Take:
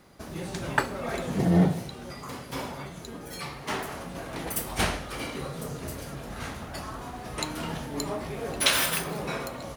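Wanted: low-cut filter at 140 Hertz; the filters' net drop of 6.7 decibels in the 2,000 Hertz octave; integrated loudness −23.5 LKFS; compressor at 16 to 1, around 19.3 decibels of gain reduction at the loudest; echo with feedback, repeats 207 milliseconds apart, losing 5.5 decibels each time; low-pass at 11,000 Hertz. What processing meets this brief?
high-pass filter 140 Hz
low-pass filter 11,000 Hz
parametric band 2,000 Hz −9 dB
downward compressor 16 to 1, threshold −37 dBFS
repeating echo 207 ms, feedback 53%, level −5.5 dB
level +17 dB

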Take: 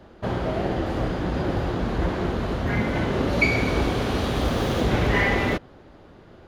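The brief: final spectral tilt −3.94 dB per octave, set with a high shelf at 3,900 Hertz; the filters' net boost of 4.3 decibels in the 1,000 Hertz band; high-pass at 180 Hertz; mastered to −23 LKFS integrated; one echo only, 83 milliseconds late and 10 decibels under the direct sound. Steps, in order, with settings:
high-pass filter 180 Hz
parametric band 1,000 Hz +6 dB
high-shelf EQ 3,900 Hz −4.5 dB
single-tap delay 83 ms −10 dB
level +1 dB

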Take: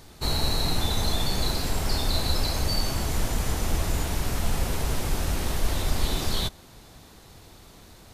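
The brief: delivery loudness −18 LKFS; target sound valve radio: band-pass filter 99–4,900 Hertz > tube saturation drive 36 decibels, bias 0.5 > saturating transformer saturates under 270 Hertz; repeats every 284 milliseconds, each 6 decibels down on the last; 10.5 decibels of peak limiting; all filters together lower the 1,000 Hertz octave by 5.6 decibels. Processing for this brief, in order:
parametric band 1,000 Hz −7.5 dB
brickwall limiter −21.5 dBFS
band-pass filter 99–4,900 Hz
repeating echo 284 ms, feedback 50%, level −6 dB
tube saturation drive 36 dB, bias 0.5
saturating transformer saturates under 270 Hz
level +25 dB

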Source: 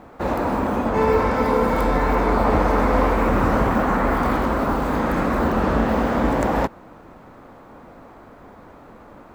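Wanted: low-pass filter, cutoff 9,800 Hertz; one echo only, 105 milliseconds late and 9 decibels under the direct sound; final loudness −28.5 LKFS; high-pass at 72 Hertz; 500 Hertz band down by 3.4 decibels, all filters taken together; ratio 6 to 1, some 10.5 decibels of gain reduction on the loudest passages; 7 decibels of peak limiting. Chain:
high-pass filter 72 Hz
low-pass filter 9,800 Hz
parametric band 500 Hz −4 dB
downward compressor 6 to 1, threshold −28 dBFS
brickwall limiter −23 dBFS
single-tap delay 105 ms −9 dB
level +3.5 dB

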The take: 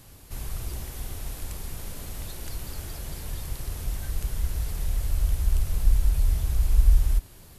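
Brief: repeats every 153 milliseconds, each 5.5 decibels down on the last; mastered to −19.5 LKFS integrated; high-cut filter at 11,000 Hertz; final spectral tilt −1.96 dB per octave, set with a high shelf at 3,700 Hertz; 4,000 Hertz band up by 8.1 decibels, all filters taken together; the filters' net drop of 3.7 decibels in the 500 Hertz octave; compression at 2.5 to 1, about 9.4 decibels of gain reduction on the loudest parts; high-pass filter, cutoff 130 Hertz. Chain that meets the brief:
high-pass filter 130 Hz
low-pass filter 11,000 Hz
parametric band 500 Hz −5 dB
high-shelf EQ 3,700 Hz +7 dB
parametric band 4,000 Hz +5.5 dB
downward compressor 2.5 to 1, threshold −44 dBFS
repeating echo 153 ms, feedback 53%, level −5.5 dB
level +21.5 dB

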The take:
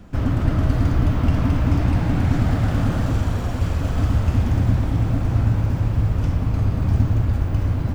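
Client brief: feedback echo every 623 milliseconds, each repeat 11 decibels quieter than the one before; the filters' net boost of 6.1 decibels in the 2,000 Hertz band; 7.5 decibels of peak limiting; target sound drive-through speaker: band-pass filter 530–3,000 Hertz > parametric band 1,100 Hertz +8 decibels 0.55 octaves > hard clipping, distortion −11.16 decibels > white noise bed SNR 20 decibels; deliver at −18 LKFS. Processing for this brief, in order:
parametric band 2,000 Hz +7 dB
brickwall limiter −12 dBFS
band-pass filter 530–3,000 Hz
parametric band 1,100 Hz +8 dB 0.55 octaves
repeating echo 623 ms, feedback 28%, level −11 dB
hard clipping −29 dBFS
white noise bed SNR 20 dB
level +14.5 dB

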